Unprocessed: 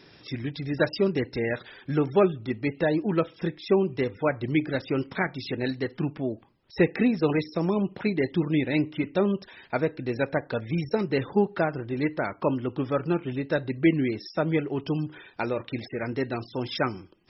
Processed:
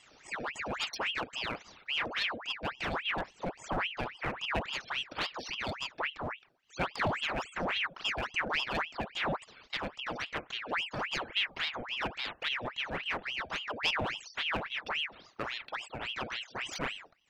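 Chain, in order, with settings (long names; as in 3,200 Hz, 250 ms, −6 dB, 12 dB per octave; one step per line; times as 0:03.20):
comb filter 1 ms, depth 85%
asymmetric clip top −26.5 dBFS
ring modulator whose carrier an LFO sweeps 1,700 Hz, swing 80%, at 3.6 Hz
level −5.5 dB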